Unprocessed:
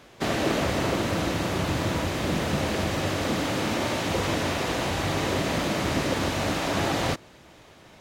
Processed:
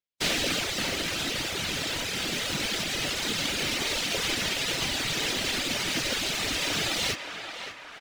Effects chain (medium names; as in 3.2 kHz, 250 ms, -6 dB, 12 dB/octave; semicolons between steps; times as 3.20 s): frequency weighting D; harmony voices -4 st -8 dB, +4 st -9 dB, +12 st -14 dB; gate -33 dBFS, range -49 dB; treble shelf 3.5 kHz +8.5 dB; band-stop 1.1 kHz, Q 16; in parallel at -10 dB: sample-rate reducer 1 kHz, jitter 0%; on the sum: reverb removal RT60 2 s; short-mantissa float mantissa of 2-bit; band-passed feedback delay 573 ms, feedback 62%, band-pass 1.2 kHz, level -5.5 dB; modulated delay 594 ms, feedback 70%, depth 146 cents, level -24 dB; trim -7.5 dB